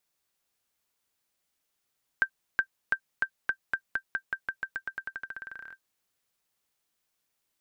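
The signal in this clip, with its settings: bouncing ball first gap 0.37 s, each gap 0.9, 1.57 kHz, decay 77 ms -12.5 dBFS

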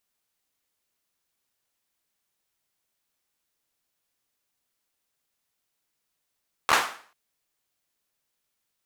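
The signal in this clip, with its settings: hand clap length 0.44 s, apart 13 ms, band 1.1 kHz, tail 0.46 s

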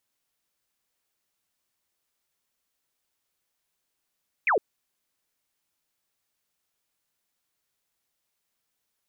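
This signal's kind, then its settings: laser zap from 2.6 kHz, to 360 Hz, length 0.11 s sine, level -19 dB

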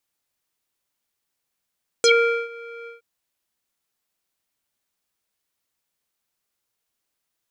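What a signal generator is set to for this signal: synth note square A#4 12 dB/octave, low-pass 2 kHz, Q 9.1, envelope 2 oct, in 0.08 s, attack 1.2 ms, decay 0.44 s, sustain -23 dB, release 0.14 s, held 0.83 s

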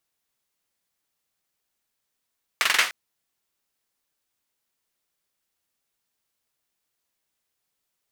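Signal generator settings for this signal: hand clap length 0.30 s, bursts 5, apart 44 ms, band 1.9 kHz, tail 0.34 s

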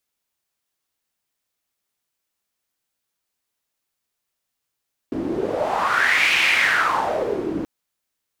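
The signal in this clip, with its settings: wind-like swept noise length 2.53 s, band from 300 Hz, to 2.4 kHz, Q 4.7, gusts 1, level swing 8 dB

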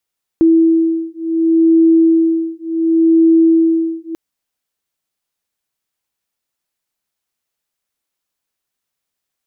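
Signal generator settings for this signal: beating tones 327 Hz, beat 0.69 Hz, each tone -12 dBFS 3.74 s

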